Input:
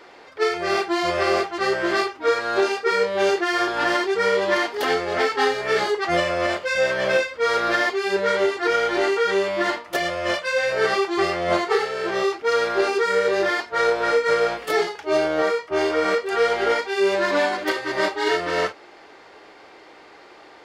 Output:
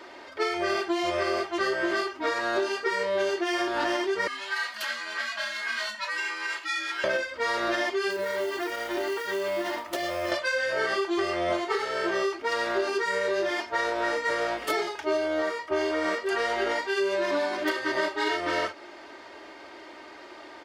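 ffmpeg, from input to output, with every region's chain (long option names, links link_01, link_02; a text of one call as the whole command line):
ffmpeg -i in.wav -filter_complex "[0:a]asettb=1/sr,asplit=3[link_01][link_02][link_03];[link_01]atrim=end=4.274[link_04];[link_02]atrim=start=4.27:end=7.04,asetpts=PTS-STARTPTS,afade=type=in:duration=0.004:curve=qsin,afade=type=out:start_time=2.766:duration=0.004:curve=qsin,acompressor=threshold=-23dB:ratio=3:attack=3.2:release=140:knee=1:detection=peak,afreqshift=-200,highpass=1400[link_05];[link_03]atrim=start=7.036[link_06];[link_04][link_05]acrossfade=duration=0.004:curve1=hsin:curve2=qsin[link_07];[link_07][link_06]acrossfade=duration=0.004:curve1=qsin:curve2=hsin,asettb=1/sr,asplit=3[link_08][link_09][link_10];[link_08]atrim=end=8.104[link_11];[link_09]atrim=start=8.1:end=10.32,asetpts=PTS-STARTPTS,afade=type=in:duration=0.004:curve=qsin,afade=type=out:start_time=2.216:duration=0.004:curve=qsin,acompressor=threshold=-27dB:ratio=5:attack=3.2:release=140:knee=1:detection=peak,acrusher=bits=5:mode=log:mix=0:aa=0.000001[link_12];[link_10]atrim=start=10.316[link_13];[link_11][link_12]acrossfade=duration=0.004:curve1=hsin:curve2=qsin[link_14];[link_14][link_13]acrossfade=duration=0.004:curve1=qsin:curve2=hsin,highpass=52,aecho=1:1:3.2:0.58,acompressor=threshold=-24dB:ratio=6" out.wav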